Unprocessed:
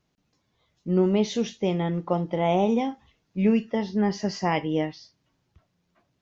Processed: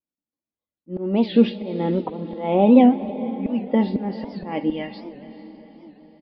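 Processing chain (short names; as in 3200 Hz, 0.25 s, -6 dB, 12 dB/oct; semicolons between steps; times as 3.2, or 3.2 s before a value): bell 330 Hz +11 dB 2.9 oct, from 4.7 s -5 dB; gate -43 dBFS, range -35 dB; auto swell 0.535 s; diffused feedback echo 0.464 s, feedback 49%, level -15 dB; reverb RT60 5.2 s, pre-delay 80 ms, DRR 18 dB; dynamic EQ 2500 Hz, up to +4 dB, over -52 dBFS, Q 3.1; steep low-pass 4800 Hz 96 dB/oct; comb 3.6 ms, depth 48%; record warp 78 rpm, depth 160 cents; gain +2.5 dB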